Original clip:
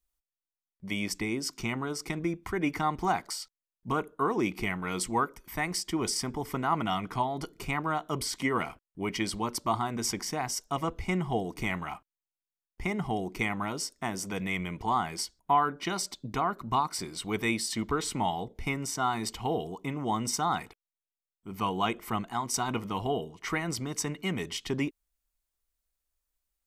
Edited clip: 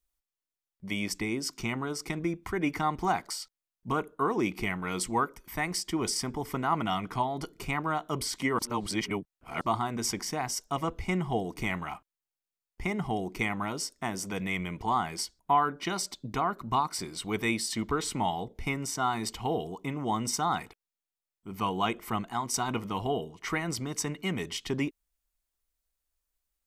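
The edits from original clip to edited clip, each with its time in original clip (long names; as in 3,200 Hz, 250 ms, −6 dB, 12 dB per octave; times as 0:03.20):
0:08.59–0:09.61: reverse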